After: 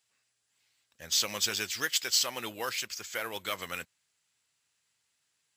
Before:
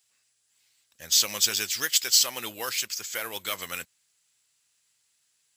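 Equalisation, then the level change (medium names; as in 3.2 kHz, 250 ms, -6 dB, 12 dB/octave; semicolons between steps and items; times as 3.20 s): treble shelf 4 kHz -10 dB; 0.0 dB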